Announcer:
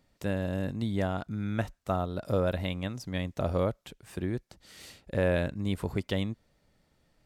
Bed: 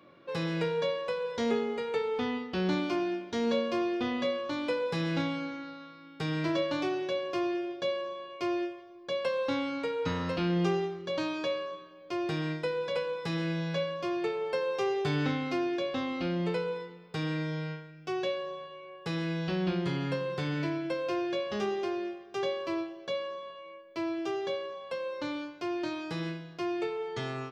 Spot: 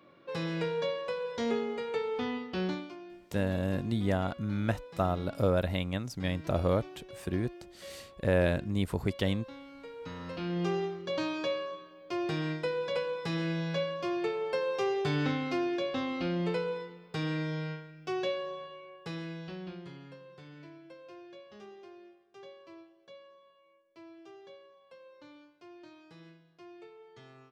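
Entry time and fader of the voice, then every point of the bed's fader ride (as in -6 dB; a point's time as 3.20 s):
3.10 s, +0.5 dB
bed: 2.64 s -2 dB
2.96 s -16.5 dB
9.65 s -16.5 dB
10.88 s -0.5 dB
18.69 s -0.5 dB
20.15 s -18.5 dB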